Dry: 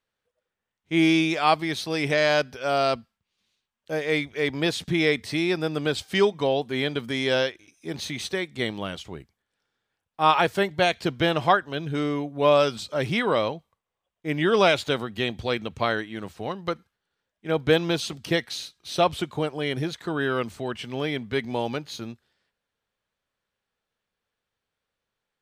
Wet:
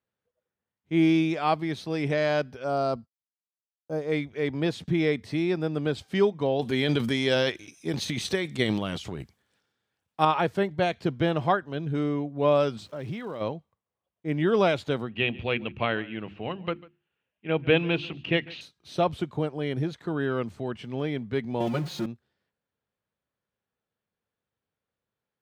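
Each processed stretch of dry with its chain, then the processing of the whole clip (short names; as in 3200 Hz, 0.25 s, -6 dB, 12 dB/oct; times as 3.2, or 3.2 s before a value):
2.64–4.12 expander -48 dBFS + band shelf 2400 Hz -10 dB 1.3 oct
6.59–10.25 high shelf 2400 Hz +11 dB + transient shaper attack +5 dB, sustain +10 dB
12.78–13.4 expander -45 dBFS + compressor 5:1, threshold -30 dBFS + crackle 570/s -41 dBFS
15.09–18.61 synth low-pass 2700 Hz, resonance Q 6.6 + notches 50/100/150/200/250/300/350 Hz + echo 0.145 s -21.5 dB
21.6–22.06 zero-crossing step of -31.5 dBFS + comb 5.6 ms, depth 91%
whole clip: HPF 99 Hz; tilt -2.5 dB/oct; gain -5 dB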